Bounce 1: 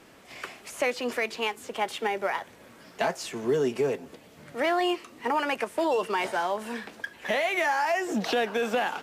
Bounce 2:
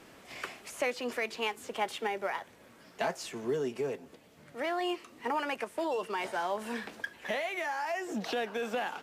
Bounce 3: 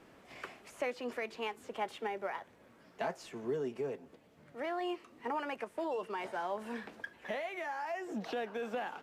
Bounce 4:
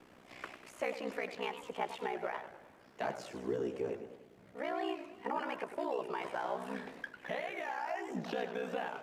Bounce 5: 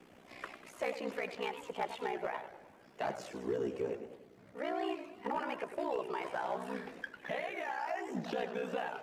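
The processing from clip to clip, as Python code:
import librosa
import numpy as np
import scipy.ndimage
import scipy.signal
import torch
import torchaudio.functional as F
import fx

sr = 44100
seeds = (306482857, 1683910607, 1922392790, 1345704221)

y1 = fx.rider(x, sr, range_db=5, speed_s=0.5)
y1 = y1 * 10.0 ** (-6.0 / 20.0)
y2 = fx.high_shelf(y1, sr, hz=2700.0, db=-9.0)
y2 = y2 * 10.0 ** (-3.5 / 20.0)
y3 = y2 * np.sin(2.0 * np.pi * 31.0 * np.arange(len(y2)) / sr)
y3 = fx.echo_warbled(y3, sr, ms=100, feedback_pct=53, rate_hz=2.8, cents=190, wet_db=-10.5)
y3 = y3 * 10.0 ** (2.5 / 20.0)
y4 = fx.spec_quant(y3, sr, step_db=15)
y4 = np.clip(y4, -10.0 ** (-28.0 / 20.0), 10.0 ** (-28.0 / 20.0))
y4 = y4 * 10.0 ** (1.0 / 20.0)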